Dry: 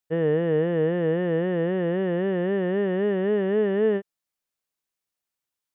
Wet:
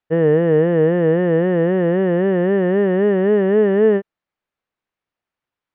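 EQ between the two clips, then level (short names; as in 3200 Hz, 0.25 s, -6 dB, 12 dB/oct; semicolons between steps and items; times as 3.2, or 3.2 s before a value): LPF 2300 Hz 12 dB/oct; +8.0 dB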